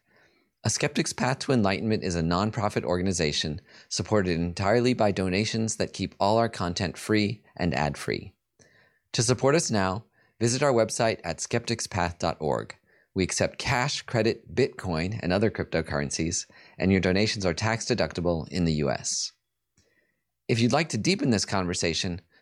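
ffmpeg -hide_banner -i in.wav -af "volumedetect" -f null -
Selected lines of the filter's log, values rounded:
mean_volume: -26.9 dB
max_volume: -9.0 dB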